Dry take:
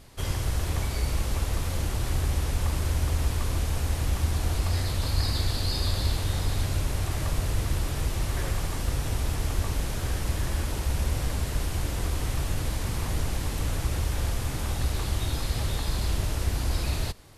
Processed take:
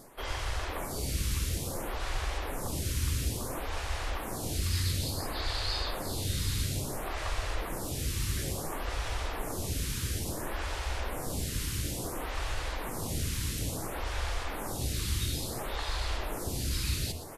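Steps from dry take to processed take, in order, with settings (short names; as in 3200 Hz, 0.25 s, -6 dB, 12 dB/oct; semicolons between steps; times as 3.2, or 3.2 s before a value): low shelf 230 Hz -6.5 dB; de-hum 80.44 Hz, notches 39; reverse; upward compressor, threshold -32 dBFS; reverse; echo 0.121 s -10.5 dB; photocell phaser 0.58 Hz; gain +2.5 dB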